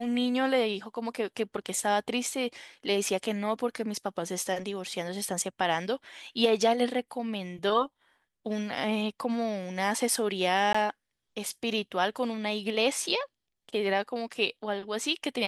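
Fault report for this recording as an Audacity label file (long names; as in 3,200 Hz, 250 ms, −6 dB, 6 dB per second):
10.730000	10.740000	drop-out 15 ms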